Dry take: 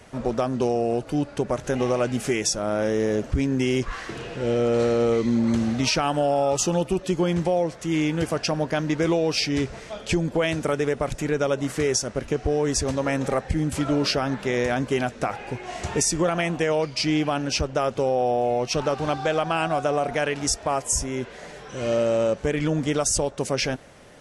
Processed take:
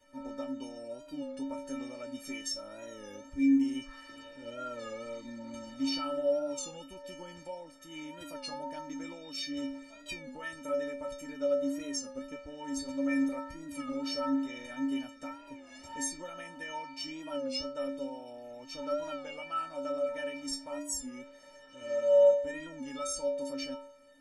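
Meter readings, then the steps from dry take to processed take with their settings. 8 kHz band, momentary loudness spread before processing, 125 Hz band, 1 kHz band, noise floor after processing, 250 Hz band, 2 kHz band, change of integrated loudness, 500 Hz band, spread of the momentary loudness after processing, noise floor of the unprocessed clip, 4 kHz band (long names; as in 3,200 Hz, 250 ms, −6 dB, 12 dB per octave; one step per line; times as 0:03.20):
−13.5 dB, 6 LU, −29.5 dB, −15.0 dB, −53 dBFS, −9.5 dB, −14.0 dB, −10.5 dB, −10.0 dB, 15 LU, −42 dBFS, −11.5 dB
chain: stiff-string resonator 270 Hz, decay 0.75 s, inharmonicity 0.03
wow of a warped record 33 1/3 rpm, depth 100 cents
level +5 dB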